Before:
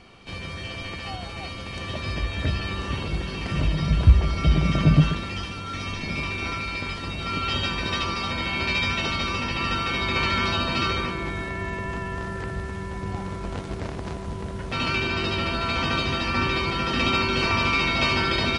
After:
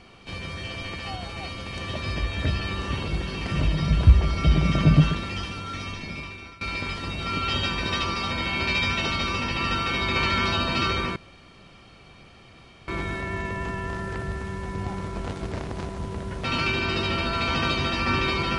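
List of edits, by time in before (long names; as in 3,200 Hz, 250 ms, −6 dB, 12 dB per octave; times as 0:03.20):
0:05.57–0:06.61: fade out, to −21 dB
0:11.16: splice in room tone 1.72 s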